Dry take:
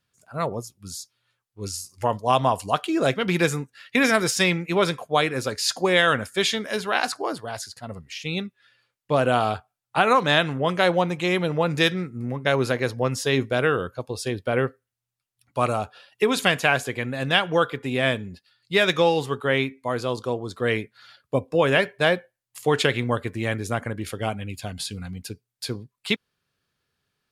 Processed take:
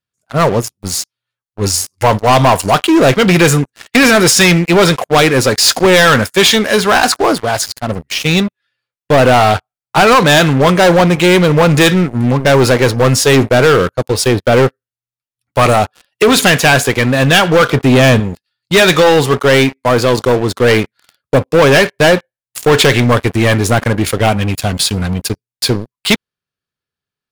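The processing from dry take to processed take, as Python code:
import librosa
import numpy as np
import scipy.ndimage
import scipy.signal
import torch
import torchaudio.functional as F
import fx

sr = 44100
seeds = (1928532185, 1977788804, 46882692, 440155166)

y = fx.low_shelf(x, sr, hz=350.0, db=8.0, at=(17.69, 18.2))
y = fx.leveller(y, sr, passes=5)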